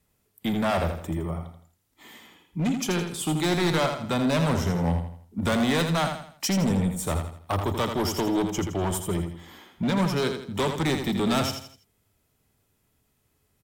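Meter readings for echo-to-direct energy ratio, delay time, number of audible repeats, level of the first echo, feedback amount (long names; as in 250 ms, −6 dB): −6.5 dB, 82 ms, 4, −7.0 dB, 38%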